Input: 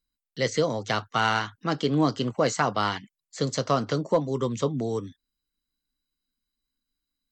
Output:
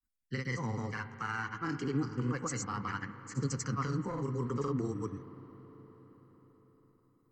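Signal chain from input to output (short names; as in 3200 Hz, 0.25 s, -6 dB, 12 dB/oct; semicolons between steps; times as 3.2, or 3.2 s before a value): limiter -20.5 dBFS, peak gain reduction 10.5 dB; grains, pitch spread up and down by 0 st; fixed phaser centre 1500 Hz, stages 4; phaser 0.3 Hz, delay 3.1 ms, feedback 32%; on a send: reverb RT60 5.4 s, pre-delay 39 ms, DRR 11 dB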